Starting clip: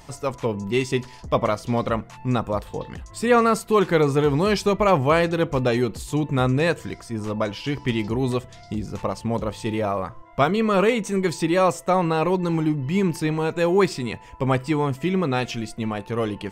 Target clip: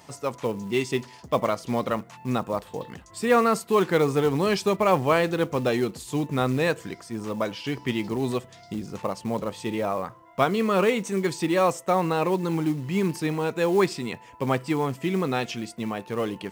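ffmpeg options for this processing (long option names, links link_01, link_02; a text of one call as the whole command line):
ffmpeg -i in.wav -filter_complex "[0:a]highpass=140,acrossover=split=1100[link_01][link_02];[link_01]acrusher=bits=6:mode=log:mix=0:aa=0.000001[link_03];[link_03][link_02]amix=inputs=2:normalize=0,volume=-2.5dB" out.wav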